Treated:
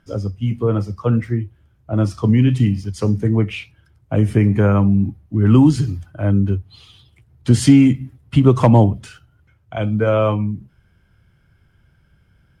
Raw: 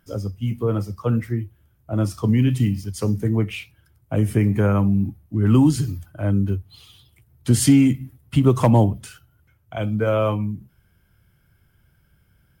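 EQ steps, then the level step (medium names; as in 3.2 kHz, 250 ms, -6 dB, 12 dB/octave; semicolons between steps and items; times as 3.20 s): distance through air 68 m; +4.0 dB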